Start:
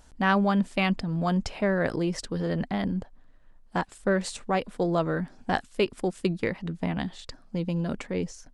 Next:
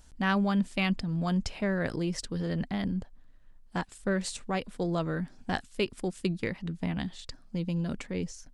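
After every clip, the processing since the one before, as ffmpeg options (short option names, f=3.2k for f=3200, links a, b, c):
-af "equalizer=f=710:w=0.42:g=-7"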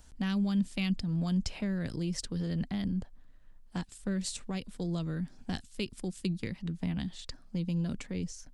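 -filter_complex "[0:a]acrossover=split=270|3000[a][b][c];[b]acompressor=threshold=-44dB:ratio=5[d];[a][d][c]amix=inputs=3:normalize=0"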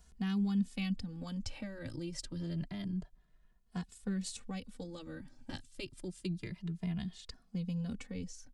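-filter_complex "[0:a]asplit=2[a][b];[b]adelay=2.4,afreqshift=0.28[c];[a][c]amix=inputs=2:normalize=1,volume=-2.5dB"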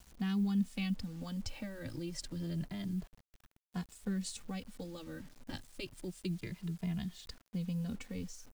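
-af "acrusher=bits=9:mix=0:aa=0.000001"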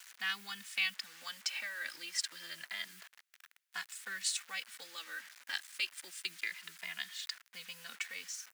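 -af "highpass=f=1.7k:t=q:w=1.9,volume=8.5dB"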